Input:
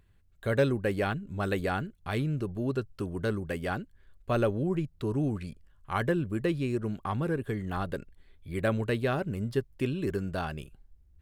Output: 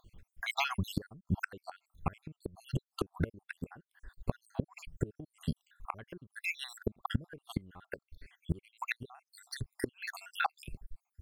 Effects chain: random spectral dropouts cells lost 71%; flipped gate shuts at -29 dBFS, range -29 dB; gain +11 dB

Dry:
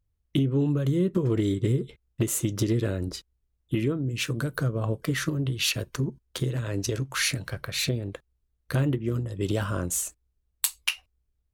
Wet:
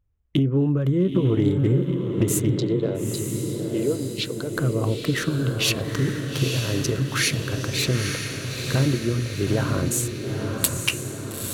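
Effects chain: Wiener smoothing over 9 samples; 2.5–4.54 speaker cabinet 300–6500 Hz, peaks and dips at 450 Hz +5 dB, 1200 Hz -8 dB, 1700 Hz -10 dB, 2500 Hz -8 dB, 4100 Hz +9 dB, 6000 Hz -7 dB; diffused feedback echo 0.906 s, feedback 56%, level -4.5 dB; gain +3.5 dB

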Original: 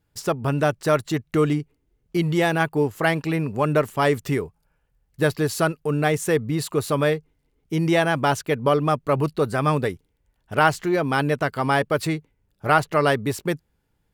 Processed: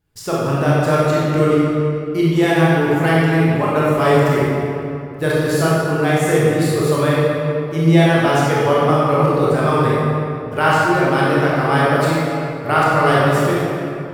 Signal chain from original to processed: short-mantissa float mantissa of 6-bit; reverb RT60 2.8 s, pre-delay 20 ms, DRR -7.5 dB; gain -2 dB

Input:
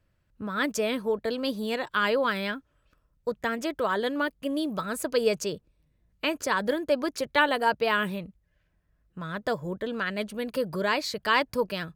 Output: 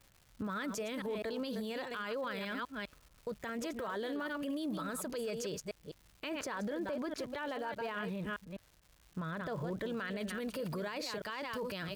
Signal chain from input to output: reverse delay 0.204 s, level -10.5 dB; 6.29–9.75 high shelf 4300 Hz -11 dB; vocal rider; limiter -32 dBFS, peak gain reduction 20 dB; crackle 320/s -51 dBFS; gain +1 dB

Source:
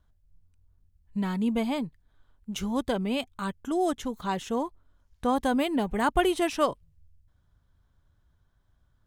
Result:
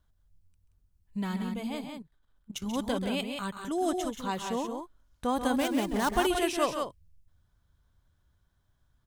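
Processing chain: 5.59–6.1 switching dead time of 0.094 ms; high shelf 2700 Hz +5.5 dB; 1.42–2.66 level quantiser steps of 16 dB; loudspeakers at several distances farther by 46 m -10 dB, 61 m -6 dB; gain -4 dB

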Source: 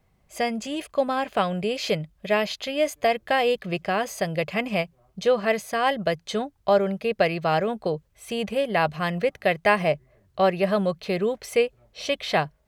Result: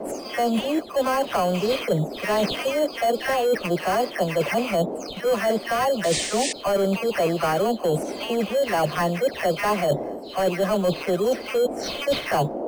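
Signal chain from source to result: spectral delay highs early, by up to 0.265 s; overdrive pedal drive 18 dB, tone 1200 Hz, clips at -8.5 dBFS; in parallel at -3.5 dB: sample-and-hold 12×; on the sum: band noise 220–700 Hz -37 dBFS; painted sound noise, 6.03–6.53, 1700–9300 Hz -28 dBFS; reverse; compressor 6:1, threshold -28 dBFS, peak gain reduction 17 dB; reverse; gain +7.5 dB

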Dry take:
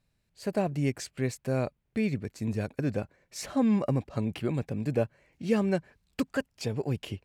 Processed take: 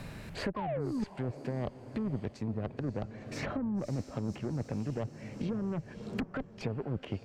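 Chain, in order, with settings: treble ducked by the level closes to 530 Hz, closed at -25.5 dBFS; painted sound fall, 0.56–1.04, 200–1100 Hz -26 dBFS; limiter -22.5 dBFS, peak gain reduction 8 dB; reverse; compressor 8:1, threshold -37 dBFS, peak gain reduction 11.5 dB; reverse; added harmonics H 2 -7 dB, 8 -23 dB, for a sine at -27.5 dBFS; on a send: diffused feedback echo 0.562 s, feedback 47%, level -15 dB; on the sum: three-band squash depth 100%; gain +4.5 dB

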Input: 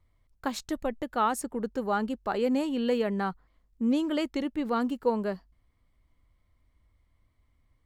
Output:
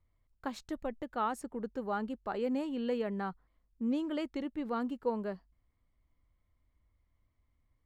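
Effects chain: high shelf 4400 Hz -8.5 dB; gain -6.5 dB

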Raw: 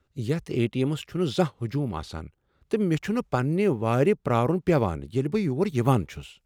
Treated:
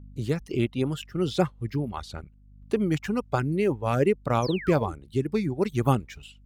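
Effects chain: gate with hold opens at -50 dBFS; hum 50 Hz, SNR 19 dB; reverb removal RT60 1.2 s; painted sound fall, 4.42–4.93, 280–6400 Hz -39 dBFS

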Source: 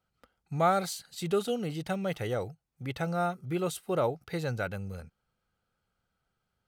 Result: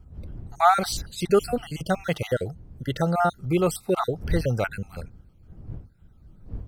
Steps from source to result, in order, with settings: random spectral dropouts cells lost 41%; wind noise 94 Hz -47 dBFS; gain +9 dB

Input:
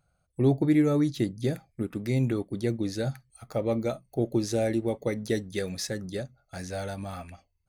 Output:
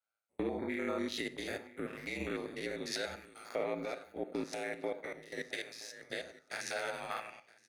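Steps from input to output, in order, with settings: stepped spectrum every 0.1 s; HPF 440 Hz 12 dB/oct; bell 2100 Hz +11.5 dB 1.6 oct; 4.07–6.1 level quantiser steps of 17 dB; limiter -26 dBFS, peak gain reduction 8.5 dB; compressor 2:1, threshold -45 dBFS, peak gain reduction 8.5 dB; ring modulator 55 Hz; feedback echo 0.972 s, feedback 30%, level -15 dB; reverb RT60 0.70 s, pre-delay 28 ms, DRR 12.5 dB; three-band expander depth 70%; gain +7 dB

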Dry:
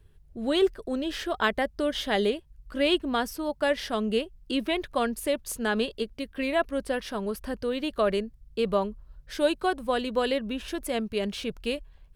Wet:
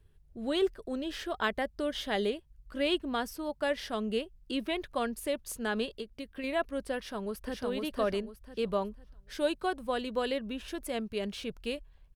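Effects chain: 5.97–6.44 compressor, threshold -30 dBFS, peak gain reduction 6.5 dB; 6.97–7.63 echo throw 0.5 s, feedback 30%, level -2 dB; gain -5.5 dB

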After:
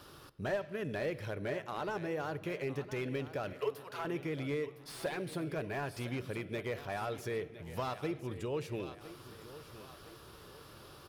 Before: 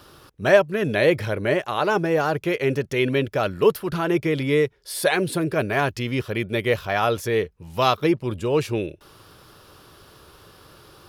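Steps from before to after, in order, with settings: 3.53–4.05 Chebyshev high-pass 410 Hz, order 8; compressor 2.5:1, threshold -34 dBFS, peak gain reduction 16 dB; added harmonics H 3 -12 dB, 5 -25 dB, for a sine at -17 dBFS; feedback echo 1.01 s, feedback 46%, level -15 dB; shoebox room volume 1900 m³, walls mixed, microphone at 0.31 m; slew limiter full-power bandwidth 29 Hz

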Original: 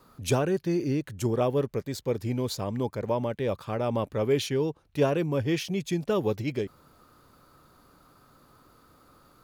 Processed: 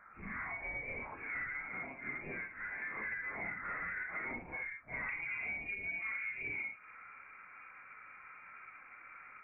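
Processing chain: phase scrambler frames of 0.2 s; HPF 980 Hz 12 dB/oct, from 5.09 s 200 Hz; compressor 16:1, threshold -41 dBFS, peak gain reduction 20 dB; soft clip -39 dBFS, distortion -17 dB; inverted band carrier 2600 Hz; gain +6 dB

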